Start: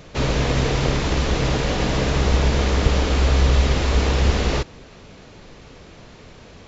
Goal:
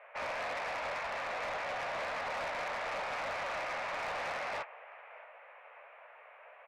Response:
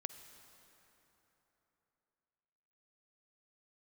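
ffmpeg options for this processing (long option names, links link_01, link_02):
-filter_complex "[0:a]flanger=delay=8.3:depth=9.1:regen=-27:speed=1.8:shape=triangular,asplit=2[link_01][link_02];[link_02]aecho=0:1:623|1246|1869|2492:0.0891|0.0437|0.0214|0.0105[link_03];[link_01][link_03]amix=inputs=2:normalize=0,aeval=exprs='0.422*(cos(1*acos(clip(val(0)/0.422,-1,1)))-cos(1*PI/2))+0.0133*(cos(7*acos(clip(val(0)/0.422,-1,1)))-cos(7*PI/2))':channel_layout=same,asuperpass=centerf=1200:order=12:qfactor=0.61,asoftclip=type=tanh:threshold=-35dB,volume=1dB"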